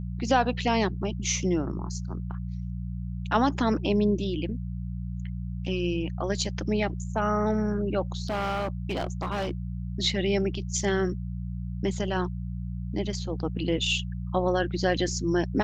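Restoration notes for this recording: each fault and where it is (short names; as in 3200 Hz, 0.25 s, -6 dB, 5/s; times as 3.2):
hum 60 Hz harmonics 3 -33 dBFS
8.28–9.51 clipped -25 dBFS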